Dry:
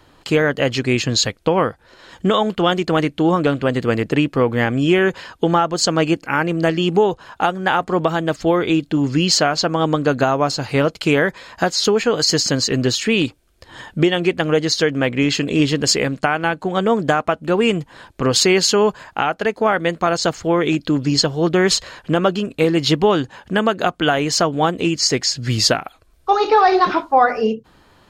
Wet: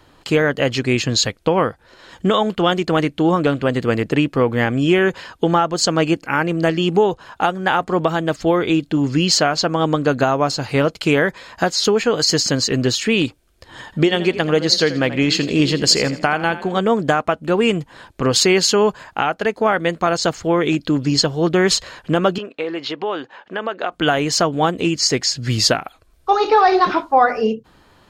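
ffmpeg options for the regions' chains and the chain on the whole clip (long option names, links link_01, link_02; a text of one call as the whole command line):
ffmpeg -i in.wav -filter_complex "[0:a]asettb=1/sr,asplit=3[link_01][link_02][link_03];[link_01]atrim=end=13.844[link_04];[link_02]atrim=start=13.84:end=16.79,asetpts=PTS-STARTPTS,afade=type=in:duration=0.004:curve=qsin,afade=type=out:start_time=2.946:duration=0.004:curve=qsin,equalizer=frequency=4400:width=4.3:gain=6,asplit=5[link_05][link_06][link_07][link_08][link_09];[link_06]adelay=83,afreqshift=32,volume=-14dB[link_10];[link_07]adelay=166,afreqshift=64,volume=-22.6dB[link_11];[link_08]adelay=249,afreqshift=96,volume=-31.3dB[link_12];[link_09]adelay=332,afreqshift=128,volume=-39.9dB[link_13];[link_05][link_10][link_11][link_12][link_13]amix=inputs=5:normalize=0,atrim=end_sample=130095[link_14];[link_03]atrim=start=16.786[link_15];[link_04][link_14]acrossfade=duration=0.004:curve1=hsin:curve2=qsin[link_16];[link_16][link_15]acrossfade=duration=0.004:curve1=qsin:curve2=hsin,asettb=1/sr,asplit=3[link_17][link_18][link_19];[link_17]atrim=end=22.384[link_20];[link_18]atrim=start=22.38:end=23.92,asetpts=PTS-STARTPTS,afade=type=in:duration=0.004:curve=qsin,afade=type=out:start_time=1.536:duration=0.004:curve=qsin,acompressor=threshold=-16dB:ratio=4:attack=3.2:release=140:knee=1:detection=peak,highpass=420,lowpass=3200[link_21];[link_19]atrim=start=23.916[link_22];[link_20][link_21]acrossfade=duration=0.004:curve1=hsin:curve2=qsin[link_23];[link_23][link_22]acrossfade=duration=0.004:curve1=qsin:curve2=hsin" out.wav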